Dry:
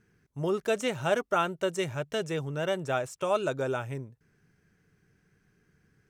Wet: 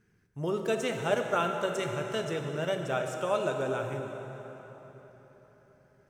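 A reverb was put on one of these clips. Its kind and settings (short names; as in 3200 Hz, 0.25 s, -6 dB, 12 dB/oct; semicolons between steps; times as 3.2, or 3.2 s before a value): plate-style reverb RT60 4.2 s, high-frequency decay 0.7×, DRR 3.5 dB; gain -2.5 dB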